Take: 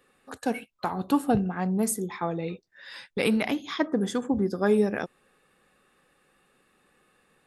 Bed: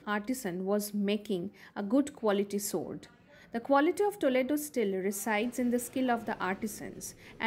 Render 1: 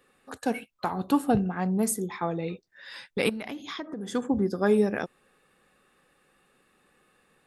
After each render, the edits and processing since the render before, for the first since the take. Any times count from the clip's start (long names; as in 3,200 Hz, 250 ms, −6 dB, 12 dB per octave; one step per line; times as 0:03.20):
0:03.29–0:04.14: downward compressor 8 to 1, threshold −32 dBFS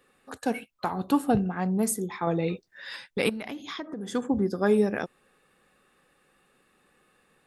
0:02.27–0:02.96: clip gain +4.5 dB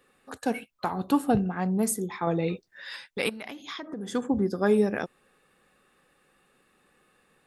0:02.83–0:03.83: low-shelf EQ 430 Hz −7.5 dB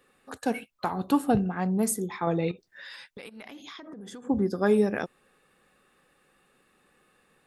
0:02.51–0:04.27: downward compressor 12 to 1, threshold −39 dBFS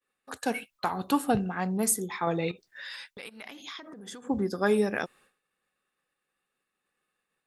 downward expander −53 dBFS
tilt shelving filter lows −4 dB, about 810 Hz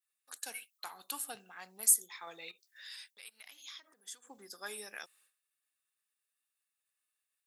Bessel high-pass filter 190 Hz
first difference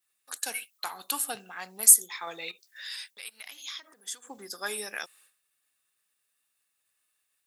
level +9.5 dB